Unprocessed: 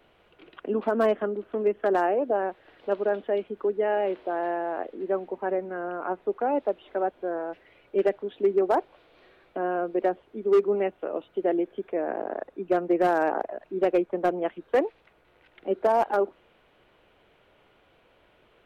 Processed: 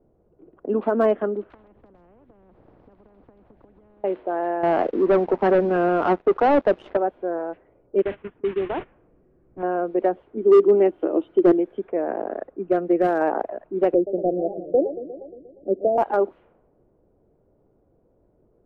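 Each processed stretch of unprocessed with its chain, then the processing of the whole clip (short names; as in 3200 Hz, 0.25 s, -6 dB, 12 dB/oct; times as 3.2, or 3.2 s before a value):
1.5–4.04 resonant high shelf 2000 Hz +13.5 dB, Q 1.5 + compressor 5:1, threshold -37 dBFS + spectral compressor 10:1
4.63–6.97 sample leveller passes 3 + air absorption 96 m
8.02–9.63 delta modulation 16 kbps, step -26.5 dBFS + gate -30 dBFS, range -21 dB + bell 680 Hz -10 dB 1.9 oct
10.37–11.52 small resonant body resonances 330/3100 Hz, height 13 dB + overloaded stage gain 13 dB
12.27–13.21 notch 930 Hz + dynamic EQ 930 Hz, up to -6 dB, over -41 dBFS, Q 2.3
13.94–15.98 steep low-pass 690 Hz 72 dB/oct + warbling echo 0.118 s, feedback 70%, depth 215 cents, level -12.5 dB
whole clip: low-pass opened by the level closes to 390 Hz, open at -23.5 dBFS; high shelf 2100 Hz -11.5 dB; gain +4.5 dB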